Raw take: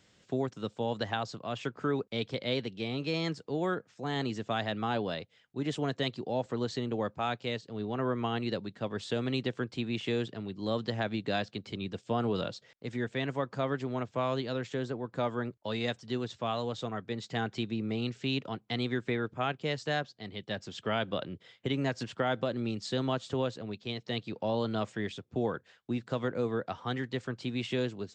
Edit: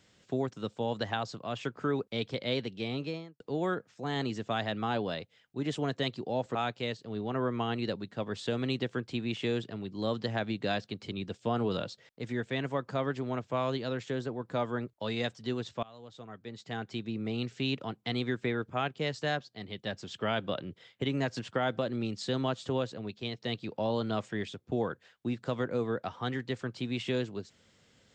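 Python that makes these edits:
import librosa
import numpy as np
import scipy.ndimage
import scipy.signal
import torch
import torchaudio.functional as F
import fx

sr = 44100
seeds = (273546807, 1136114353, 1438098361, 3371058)

y = fx.studio_fade_out(x, sr, start_s=2.92, length_s=0.48)
y = fx.edit(y, sr, fx.cut(start_s=6.55, length_s=0.64),
    fx.fade_in_from(start_s=16.47, length_s=1.67, floor_db=-23.5), tone=tone)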